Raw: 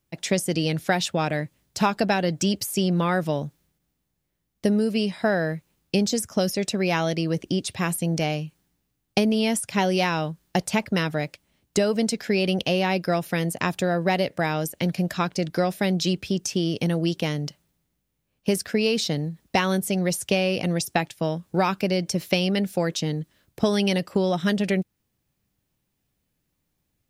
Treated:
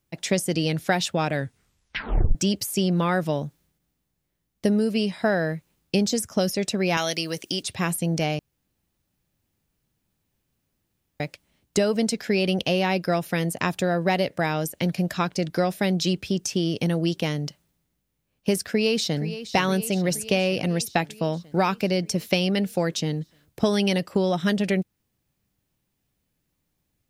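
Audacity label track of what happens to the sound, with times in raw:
1.330000	1.330000	tape stop 1.02 s
6.970000	7.630000	tilt +3.5 dB/oct
8.390000	11.200000	room tone
18.690000	19.260000	echo throw 0.47 s, feedback 70%, level -12.5 dB

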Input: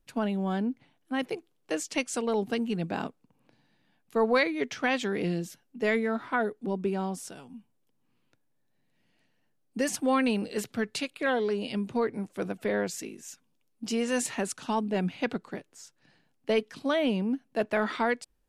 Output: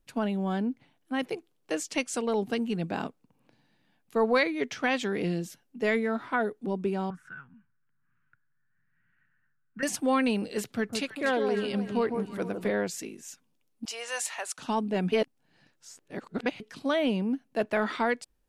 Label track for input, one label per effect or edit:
7.100000	9.830000	EQ curve 160 Hz 0 dB, 240 Hz -12 dB, 650 Hz -21 dB, 990 Hz -7 dB, 1500 Hz +14 dB, 2200 Hz -4 dB, 4700 Hz -27 dB
10.620000	12.700000	echo with dull and thin repeats by turns 0.154 s, split 1200 Hz, feedback 56%, level -5.5 dB
13.850000	14.580000	HPF 640 Hz 24 dB/oct
15.120000	16.600000	reverse

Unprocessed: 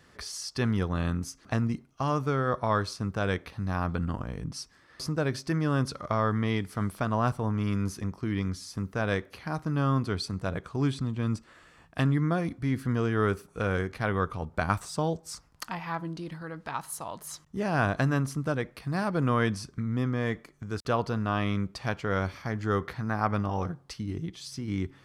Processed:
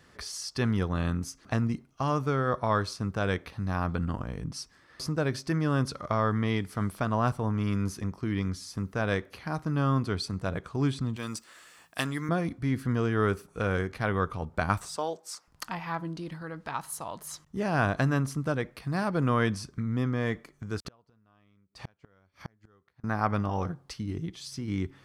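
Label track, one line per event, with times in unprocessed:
11.160000	12.290000	RIAA curve recording
14.960000	15.480000	HPF 450 Hz
20.780000	23.040000	flipped gate shuts at -24 dBFS, range -36 dB

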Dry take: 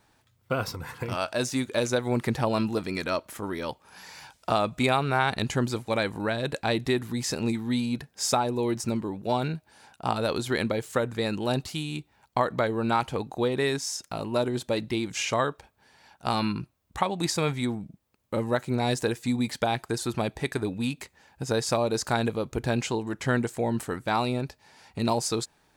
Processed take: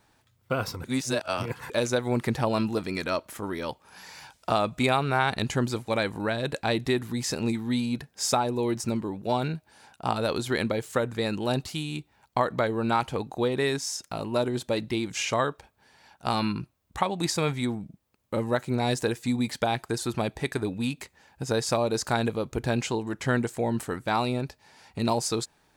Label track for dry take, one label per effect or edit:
0.840000	1.700000	reverse

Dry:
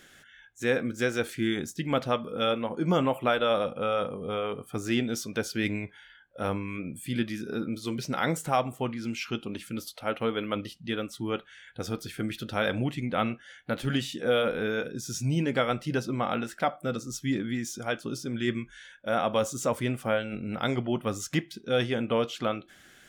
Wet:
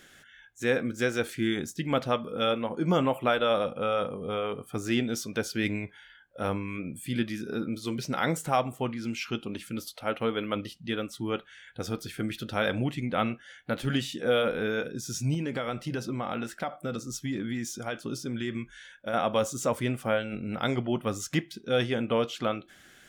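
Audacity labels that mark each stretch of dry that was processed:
15.340000	19.140000	compressor 5:1, threshold -27 dBFS

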